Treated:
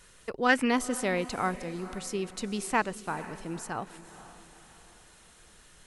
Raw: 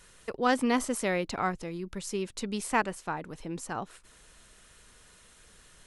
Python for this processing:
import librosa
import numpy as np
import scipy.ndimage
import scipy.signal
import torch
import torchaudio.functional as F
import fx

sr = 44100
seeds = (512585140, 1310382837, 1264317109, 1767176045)

y = fx.echo_diffused(x, sr, ms=473, feedback_pct=46, wet_db=-15.0)
y = fx.spec_box(y, sr, start_s=0.49, length_s=0.21, low_hz=1300.0, high_hz=3000.0, gain_db=9)